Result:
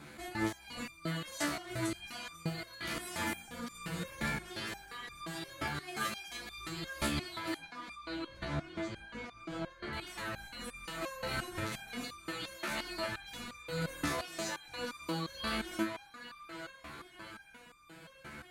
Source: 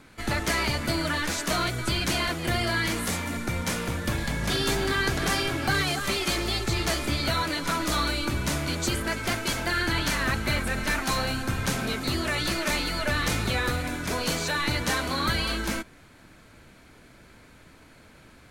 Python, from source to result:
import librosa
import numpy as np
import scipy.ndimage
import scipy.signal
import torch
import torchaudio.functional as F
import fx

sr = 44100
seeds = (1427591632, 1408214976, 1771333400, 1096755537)

y = scipy.signal.sosfilt(scipy.signal.butter(2, 47.0, 'highpass', fs=sr, output='sos'), x)
y = fx.peak_eq(y, sr, hz=5600.0, db=-2.5, octaves=0.38)
y = y + 0.43 * np.pad(y, (int(5.9 * sr / 1000.0), 0))[:len(y)]
y = fx.over_compress(y, sr, threshold_db=-33.0, ratio=-1.0)
y = fx.spacing_loss(y, sr, db_at_10k=22, at=(7.57, 9.93))
y = fx.echo_banded(y, sr, ms=877, feedback_pct=54, hz=1600.0, wet_db=-3.5)
y = fx.resonator_held(y, sr, hz=5.7, low_hz=73.0, high_hz=1200.0)
y = F.gain(torch.from_numpy(y), 4.5).numpy()